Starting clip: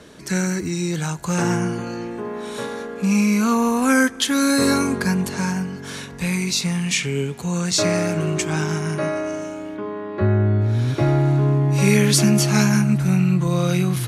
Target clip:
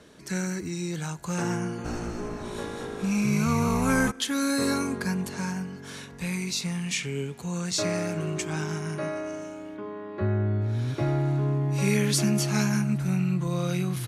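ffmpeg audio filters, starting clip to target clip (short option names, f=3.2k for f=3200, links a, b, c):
-filter_complex "[0:a]asplit=3[a][b][c];[a]afade=t=out:st=1.84:d=0.02[d];[b]asplit=9[e][f][g][h][i][j][k][l][m];[f]adelay=215,afreqshift=-54,volume=-3.5dB[n];[g]adelay=430,afreqshift=-108,volume=-8.1dB[o];[h]adelay=645,afreqshift=-162,volume=-12.7dB[p];[i]adelay=860,afreqshift=-216,volume=-17.2dB[q];[j]adelay=1075,afreqshift=-270,volume=-21.8dB[r];[k]adelay=1290,afreqshift=-324,volume=-26.4dB[s];[l]adelay=1505,afreqshift=-378,volume=-31dB[t];[m]adelay=1720,afreqshift=-432,volume=-35.6dB[u];[e][n][o][p][q][r][s][t][u]amix=inputs=9:normalize=0,afade=t=in:st=1.84:d=0.02,afade=t=out:st=4.1:d=0.02[v];[c]afade=t=in:st=4.1:d=0.02[w];[d][v][w]amix=inputs=3:normalize=0,volume=-8dB"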